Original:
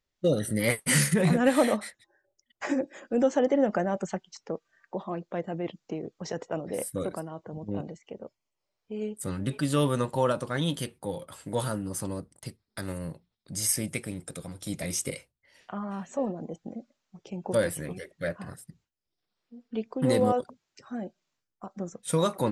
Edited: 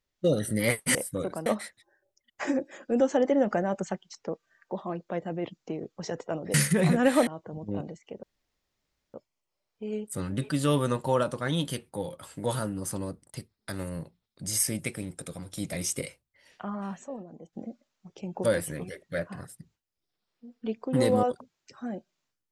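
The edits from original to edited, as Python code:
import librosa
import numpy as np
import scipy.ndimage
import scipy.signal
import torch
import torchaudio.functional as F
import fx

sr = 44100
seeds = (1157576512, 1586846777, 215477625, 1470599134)

y = fx.edit(x, sr, fx.swap(start_s=0.95, length_s=0.73, other_s=6.76, other_length_s=0.51),
    fx.insert_room_tone(at_s=8.23, length_s=0.91),
    fx.clip_gain(start_s=16.13, length_s=0.49, db=-9.5), tone=tone)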